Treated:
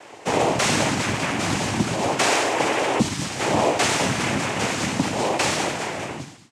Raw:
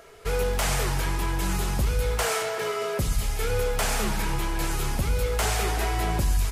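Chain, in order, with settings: fade out at the end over 1.26 s; noise-vocoded speech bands 4; trim +7.5 dB

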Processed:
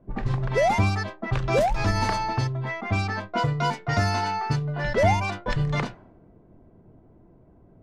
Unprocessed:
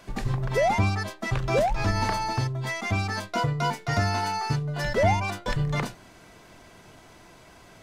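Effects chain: level-controlled noise filter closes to 330 Hz, open at -20 dBFS; trim +1.5 dB

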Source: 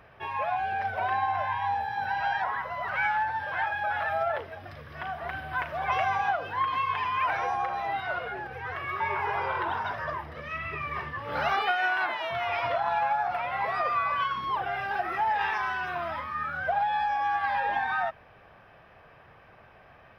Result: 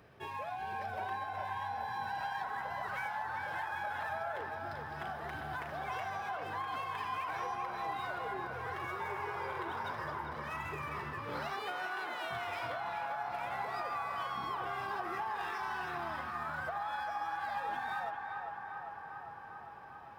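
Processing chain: median filter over 5 samples; high-pass 150 Hz 6 dB/octave; high-order bell 1.3 kHz -9 dB 2.8 oct; compression, threshold -38 dBFS, peak gain reduction 7.5 dB; on a send: band-passed feedback delay 399 ms, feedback 80%, band-pass 1.1 kHz, level -4 dB; on the sum: trim +1 dB

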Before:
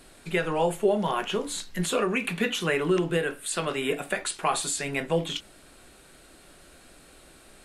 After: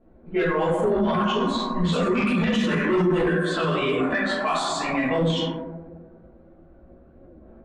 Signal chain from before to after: reverberation RT60 1.9 s, pre-delay 5 ms, DRR -7 dB; spectral noise reduction 10 dB; level-controlled noise filter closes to 590 Hz, open at -15 dBFS; dynamic bell 770 Hz, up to -6 dB, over -33 dBFS, Q 1.6; sine folder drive 5 dB, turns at -6.5 dBFS; chorus voices 4, 1.5 Hz, delay 14 ms, depth 3 ms; peak limiter -14.5 dBFS, peak gain reduction 11 dB; distance through air 100 m

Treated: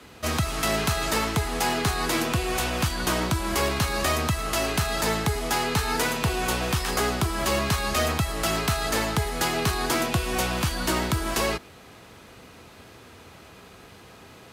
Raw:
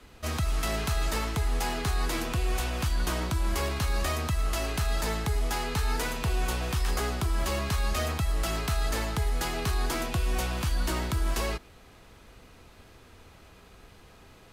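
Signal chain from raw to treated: high-pass 100 Hz 12 dB/octave; trim +7 dB

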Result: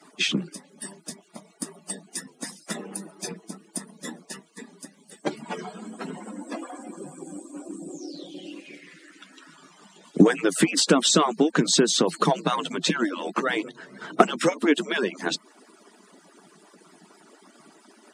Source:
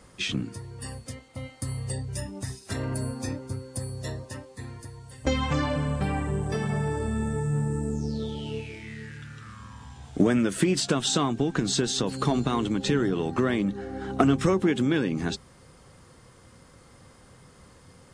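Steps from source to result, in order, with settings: harmonic-percussive separation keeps percussive; elliptic high-pass 160 Hz; trim +7.5 dB

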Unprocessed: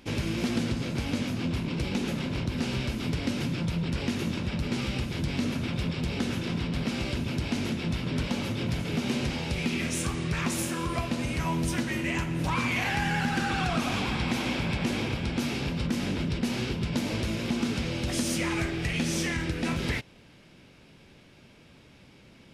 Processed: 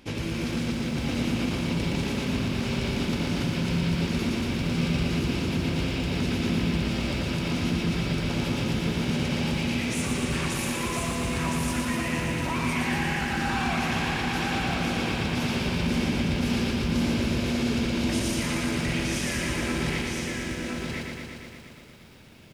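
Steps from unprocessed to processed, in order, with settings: peak limiter -22.5 dBFS, peak gain reduction 6 dB; delay 1015 ms -3 dB; bit-crushed delay 117 ms, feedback 80%, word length 10-bit, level -4 dB

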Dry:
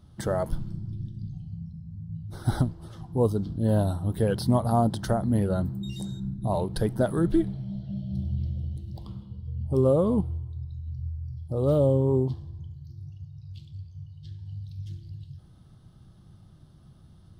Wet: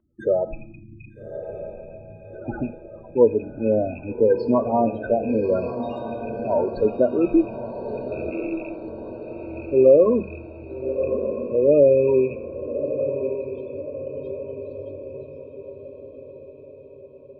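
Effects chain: rattle on loud lows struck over -27 dBFS, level -22 dBFS; 8.30–8.88 s: Bessel high-pass 690 Hz; gate -48 dBFS, range -10 dB; loudest bins only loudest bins 16; echo that smears into a reverb 1217 ms, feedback 52%, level -9 dB; reverberation RT60 0.60 s, pre-delay 3 ms, DRR 10.5 dB

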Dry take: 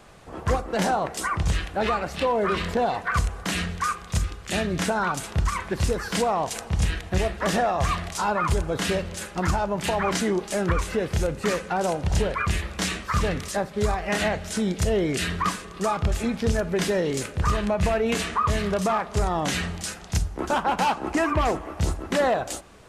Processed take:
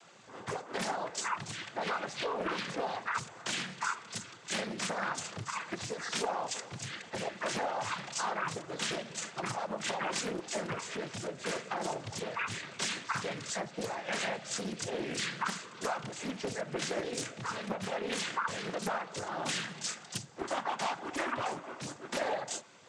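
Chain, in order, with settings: compression 2.5:1, threshold -25 dBFS, peak gain reduction 5.5 dB; tilt EQ +2 dB/octave; noise-vocoded speech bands 16; loudspeaker Doppler distortion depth 0.65 ms; trim -6 dB

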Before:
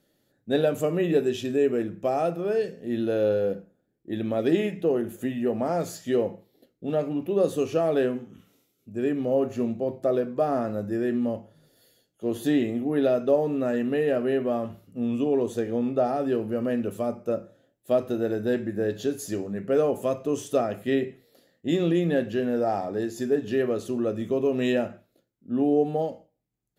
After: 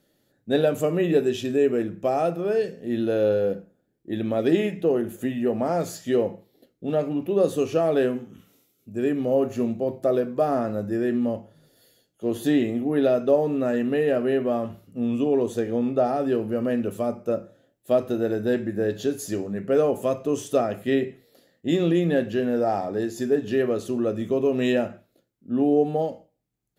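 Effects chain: 8.01–10.55 s: treble shelf 8.5 kHz +5.5 dB; trim +2 dB

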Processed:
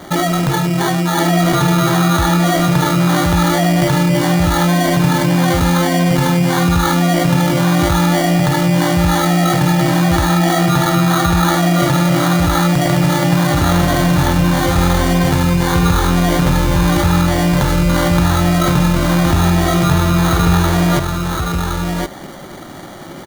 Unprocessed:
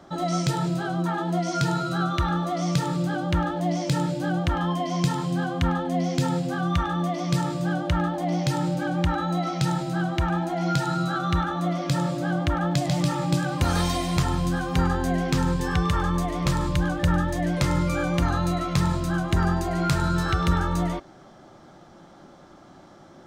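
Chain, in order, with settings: in parallel at +2.5 dB: compressor with a negative ratio -30 dBFS, ratio -1; on the sum: sample-rate reducer 2.6 kHz, jitter 0%; delay 1067 ms -3.5 dB; trim +4.5 dB

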